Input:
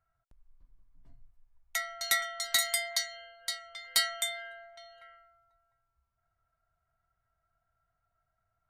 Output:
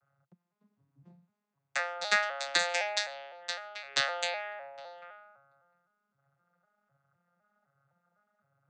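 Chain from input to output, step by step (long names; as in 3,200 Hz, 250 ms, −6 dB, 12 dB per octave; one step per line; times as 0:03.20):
vocoder with an arpeggio as carrier major triad, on C#3, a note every 255 ms
level +2 dB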